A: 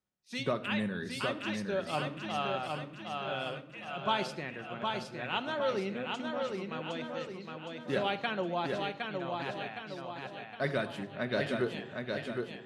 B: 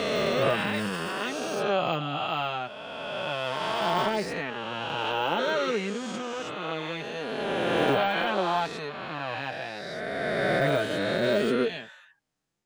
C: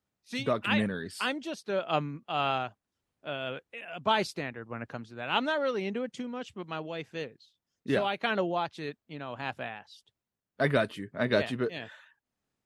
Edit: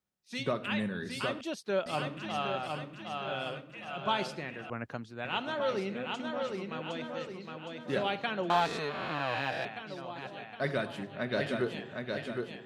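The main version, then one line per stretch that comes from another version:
A
0:01.41–0:01.86: punch in from C
0:04.70–0:05.25: punch in from C
0:08.50–0:09.65: punch in from B

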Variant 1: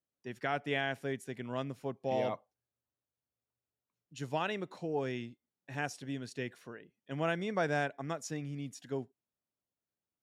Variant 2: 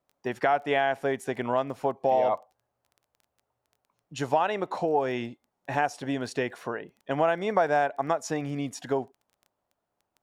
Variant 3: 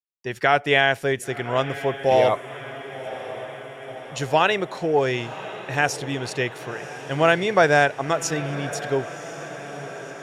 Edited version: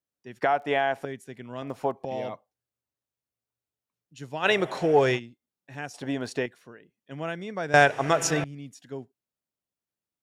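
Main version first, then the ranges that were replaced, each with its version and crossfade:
1
0:00.42–0:01.05: punch in from 2
0:01.62–0:02.05: punch in from 2
0:04.45–0:05.17: punch in from 3, crossfade 0.06 s
0:05.94–0:06.46: punch in from 2
0:07.74–0:08.44: punch in from 3

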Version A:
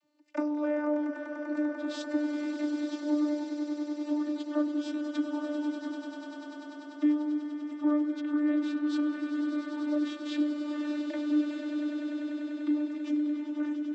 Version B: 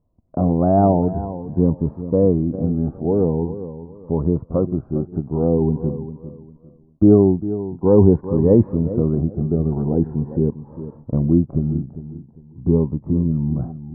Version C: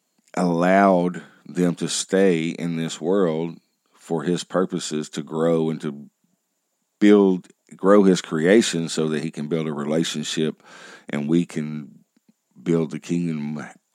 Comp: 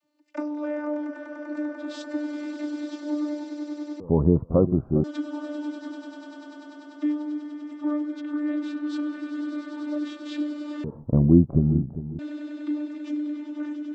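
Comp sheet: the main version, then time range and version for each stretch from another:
A
0:04.00–0:05.04: punch in from B
0:10.84–0:12.19: punch in from B
not used: C

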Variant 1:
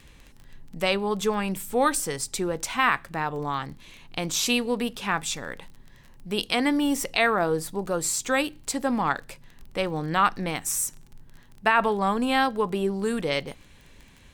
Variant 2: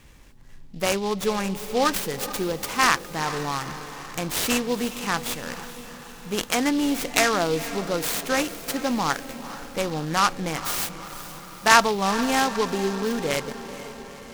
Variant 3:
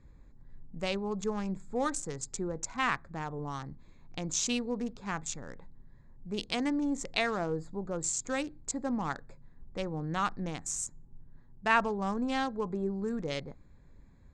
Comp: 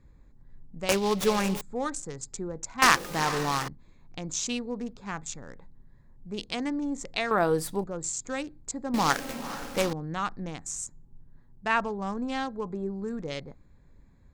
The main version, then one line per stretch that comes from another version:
3
0:00.89–0:01.61: punch in from 2
0:02.82–0:03.68: punch in from 2
0:07.31–0:07.84: punch in from 1
0:08.94–0:09.93: punch in from 2

